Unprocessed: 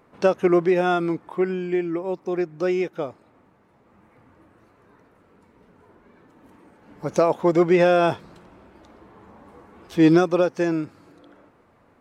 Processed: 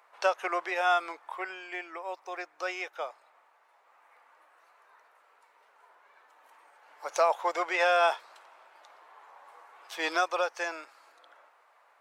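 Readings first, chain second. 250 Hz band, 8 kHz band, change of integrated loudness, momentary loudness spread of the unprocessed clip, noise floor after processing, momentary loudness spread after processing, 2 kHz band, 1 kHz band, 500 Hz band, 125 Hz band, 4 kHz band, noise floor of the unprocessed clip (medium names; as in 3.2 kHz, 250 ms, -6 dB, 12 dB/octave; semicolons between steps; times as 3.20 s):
-25.5 dB, no reading, -8.5 dB, 12 LU, -64 dBFS, 15 LU, 0.0 dB, -1.5 dB, -11.0 dB, under -40 dB, 0.0 dB, -59 dBFS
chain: high-pass 710 Hz 24 dB/octave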